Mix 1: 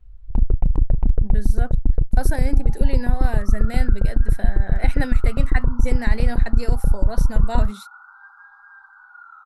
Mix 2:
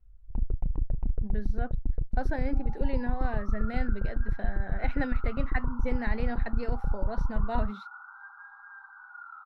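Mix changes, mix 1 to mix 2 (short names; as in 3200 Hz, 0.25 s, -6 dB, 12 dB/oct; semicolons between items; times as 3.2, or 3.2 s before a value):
speech -4.0 dB; first sound -11.5 dB; master: add air absorption 270 m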